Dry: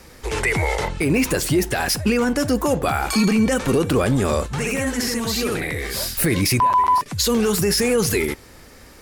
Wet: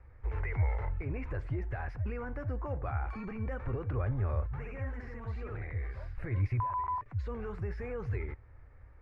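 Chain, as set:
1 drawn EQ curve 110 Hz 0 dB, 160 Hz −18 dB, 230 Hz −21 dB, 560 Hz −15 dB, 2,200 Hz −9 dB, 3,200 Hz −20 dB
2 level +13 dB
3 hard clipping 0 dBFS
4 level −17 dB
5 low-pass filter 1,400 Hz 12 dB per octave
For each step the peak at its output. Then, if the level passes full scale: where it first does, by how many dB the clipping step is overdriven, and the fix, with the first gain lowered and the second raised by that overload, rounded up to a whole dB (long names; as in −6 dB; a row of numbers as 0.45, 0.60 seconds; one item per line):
−15.0, −2.0, −2.0, −19.0, −20.0 dBFS
no step passes full scale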